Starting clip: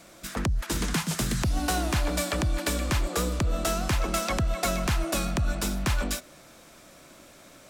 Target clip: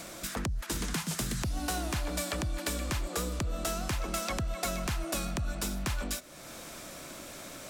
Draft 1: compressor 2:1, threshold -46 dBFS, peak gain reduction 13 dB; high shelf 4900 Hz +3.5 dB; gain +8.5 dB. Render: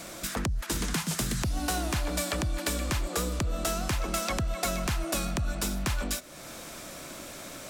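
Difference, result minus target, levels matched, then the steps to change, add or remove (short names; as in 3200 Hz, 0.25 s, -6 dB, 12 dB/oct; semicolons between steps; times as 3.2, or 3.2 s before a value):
compressor: peak gain reduction -3 dB
change: compressor 2:1, threshold -52.5 dBFS, peak gain reduction 16 dB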